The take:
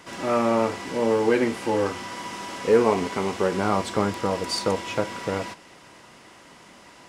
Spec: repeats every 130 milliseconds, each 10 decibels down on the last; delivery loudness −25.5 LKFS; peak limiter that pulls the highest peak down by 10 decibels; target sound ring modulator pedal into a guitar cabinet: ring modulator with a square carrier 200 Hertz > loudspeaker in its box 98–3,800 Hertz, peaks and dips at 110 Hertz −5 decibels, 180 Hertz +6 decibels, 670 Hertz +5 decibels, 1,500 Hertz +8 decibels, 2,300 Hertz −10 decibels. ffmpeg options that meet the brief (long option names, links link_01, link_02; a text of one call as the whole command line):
ffmpeg -i in.wav -af "alimiter=limit=-15.5dB:level=0:latency=1,aecho=1:1:130|260|390|520:0.316|0.101|0.0324|0.0104,aeval=exprs='val(0)*sgn(sin(2*PI*200*n/s))':channel_layout=same,highpass=98,equalizer=frequency=110:width_type=q:width=4:gain=-5,equalizer=frequency=180:width_type=q:width=4:gain=6,equalizer=frequency=670:width_type=q:width=4:gain=5,equalizer=frequency=1500:width_type=q:width=4:gain=8,equalizer=frequency=2300:width_type=q:width=4:gain=-10,lowpass=frequency=3800:width=0.5412,lowpass=frequency=3800:width=1.3066" out.wav